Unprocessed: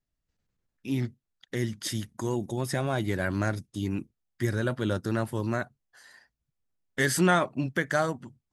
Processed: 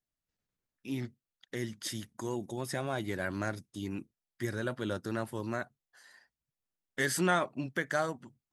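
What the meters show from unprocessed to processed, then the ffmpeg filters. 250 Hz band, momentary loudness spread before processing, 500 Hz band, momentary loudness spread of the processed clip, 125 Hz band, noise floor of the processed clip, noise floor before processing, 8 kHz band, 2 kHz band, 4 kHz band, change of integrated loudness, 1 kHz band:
−6.5 dB, 11 LU, −5.5 dB, 12 LU, −9.5 dB, below −85 dBFS, −84 dBFS, −4.5 dB, −4.5 dB, −4.5 dB, −6.0 dB, −4.5 dB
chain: -af "lowshelf=frequency=140:gain=-9,volume=-4.5dB"

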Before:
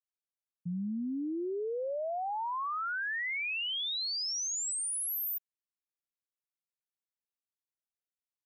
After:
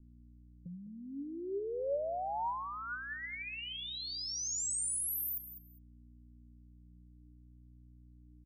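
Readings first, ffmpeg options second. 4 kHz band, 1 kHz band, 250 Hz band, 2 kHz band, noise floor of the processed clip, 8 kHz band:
−7.0 dB, −3.0 dB, −8.5 dB, −8.0 dB, −58 dBFS, −1.5 dB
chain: -filter_complex "[0:a]acrossover=split=720|7600[link_01][link_02][link_03];[link_01]acompressor=threshold=-39dB:ratio=4[link_04];[link_02]acompressor=threshold=-48dB:ratio=4[link_05];[link_03]acompressor=threshold=-40dB:ratio=4[link_06];[link_04][link_05][link_06]amix=inputs=3:normalize=0,aeval=exprs='val(0)+0.00126*(sin(2*PI*60*n/s)+sin(2*PI*2*60*n/s)/2+sin(2*PI*3*60*n/s)/3+sin(2*PI*4*60*n/s)/4+sin(2*PI*5*60*n/s)/5)':channel_layout=same,acrossover=split=360|2600[link_07][link_08][link_09];[link_07]acompressor=threshold=-53dB:ratio=6[link_10];[link_10][link_08][link_09]amix=inputs=3:normalize=0,afftfilt=real='re*gte(hypot(re,im),0.000794)':imag='im*gte(hypot(re,im),0.000794)':win_size=1024:overlap=0.75,asplit=2[link_11][link_12];[link_12]aecho=0:1:203|406:0.251|0.0427[link_13];[link_11][link_13]amix=inputs=2:normalize=0,flanger=delay=4:depth=3.6:regen=68:speed=0.32:shape=sinusoidal,volume=7dB"

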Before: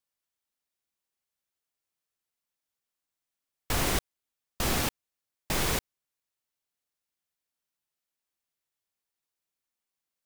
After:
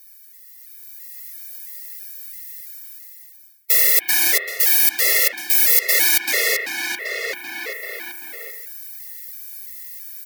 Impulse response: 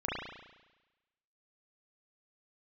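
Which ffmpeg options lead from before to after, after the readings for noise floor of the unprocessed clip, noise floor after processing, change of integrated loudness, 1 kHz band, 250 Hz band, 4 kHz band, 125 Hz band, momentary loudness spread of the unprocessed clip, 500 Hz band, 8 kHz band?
below −85 dBFS, −46 dBFS, +14.5 dB, +1.0 dB, −3.0 dB, +13.0 dB, below −25 dB, 5 LU, +8.0 dB, +16.5 dB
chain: -filter_complex "[0:a]equalizer=frequency=500:width_type=o:width=1:gain=9,equalizer=frequency=2000:width_type=o:width=1:gain=10,equalizer=frequency=8000:width_type=o:width=1:gain=-7,equalizer=frequency=16000:width_type=o:width=1:gain=9,asplit=2[link_01][link_02];[link_02]adelay=388,lowpass=frequency=4800:poles=1,volume=-5dB,asplit=2[link_03][link_04];[link_04]adelay=388,lowpass=frequency=4800:poles=1,volume=0.52,asplit=2[link_05][link_06];[link_06]adelay=388,lowpass=frequency=4800:poles=1,volume=0.52,asplit=2[link_07][link_08];[link_08]adelay=388,lowpass=frequency=4800:poles=1,volume=0.52,asplit=2[link_09][link_10];[link_10]adelay=388,lowpass=frequency=4800:poles=1,volume=0.52,asplit=2[link_11][link_12];[link_12]adelay=388,lowpass=frequency=4800:poles=1,volume=0.52,asplit=2[link_13][link_14];[link_14]adelay=388,lowpass=frequency=4800:poles=1,volume=0.52[link_15];[link_01][link_03][link_05][link_07][link_09][link_11][link_13][link_15]amix=inputs=8:normalize=0,aexciter=amount=5.5:drive=7.2:freq=4200,aeval=exprs='1.26*sin(PI/2*1.78*val(0)/1.26)':channel_layout=same,highpass=frequency=330:width=0.5412,highpass=frequency=330:width=1.3066,areverse,acompressor=threshold=-16dB:ratio=10,areverse,highshelf=frequency=1500:width_type=q:width=3:gain=6.5,asplit=2[link_16][link_17];[1:a]atrim=start_sample=2205,lowpass=3100[link_18];[link_17][link_18]afir=irnorm=-1:irlink=0,volume=-12dB[link_19];[link_16][link_19]amix=inputs=2:normalize=0,dynaudnorm=framelen=260:gausssize=7:maxgain=10dB,alimiter=level_in=5.5dB:limit=-1dB:release=50:level=0:latency=1,afftfilt=real='re*gt(sin(2*PI*1.5*pts/sr)*(1-2*mod(floor(b*sr/1024/360),2)),0)':imag='im*gt(sin(2*PI*1.5*pts/sr)*(1-2*mod(floor(b*sr/1024/360),2)),0)':win_size=1024:overlap=0.75"

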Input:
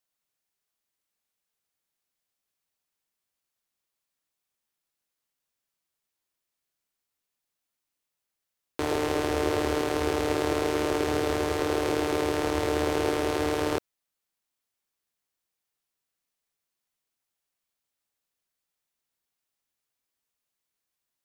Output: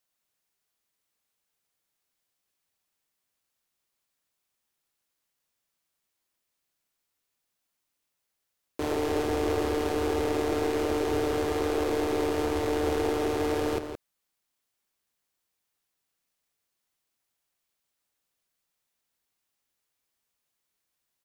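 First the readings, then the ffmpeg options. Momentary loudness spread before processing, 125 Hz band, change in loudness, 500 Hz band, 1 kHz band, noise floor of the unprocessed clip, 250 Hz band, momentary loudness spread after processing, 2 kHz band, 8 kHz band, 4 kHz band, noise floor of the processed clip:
2 LU, −1.5 dB, −1.0 dB, 0.0 dB, −2.0 dB, −85 dBFS, −0.5 dB, 4 LU, −3.5 dB, −3.5 dB, −3.5 dB, −82 dBFS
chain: -filter_complex "[0:a]asplit=2[link_01][link_02];[link_02]alimiter=limit=-21.5dB:level=0:latency=1,volume=2.5dB[link_03];[link_01][link_03]amix=inputs=2:normalize=0,aeval=exprs='clip(val(0),-1,0.1)':channel_layout=same,asplit=2[link_04][link_05];[link_05]adelay=169.1,volume=-8dB,highshelf=frequency=4000:gain=-3.8[link_06];[link_04][link_06]amix=inputs=2:normalize=0,volume=-4.5dB"

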